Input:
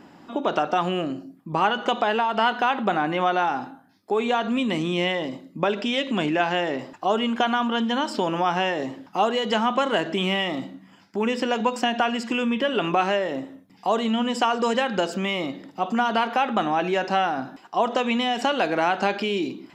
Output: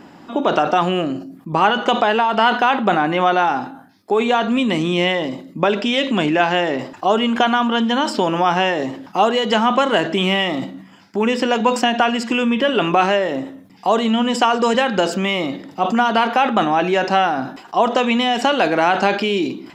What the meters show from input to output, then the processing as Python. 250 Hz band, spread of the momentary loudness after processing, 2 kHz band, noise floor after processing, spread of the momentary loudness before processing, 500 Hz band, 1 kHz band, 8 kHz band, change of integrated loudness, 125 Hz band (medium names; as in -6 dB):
+6.5 dB, 7 LU, +6.5 dB, -44 dBFS, 7 LU, +6.5 dB, +6.0 dB, +7.0 dB, +6.5 dB, +6.5 dB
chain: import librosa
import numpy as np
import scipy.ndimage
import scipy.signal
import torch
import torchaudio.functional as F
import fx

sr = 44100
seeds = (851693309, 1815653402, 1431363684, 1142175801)

y = fx.sustainer(x, sr, db_per_s=110.0)
y = F.gain(torch.from_numpy(y), 6.0).numpy()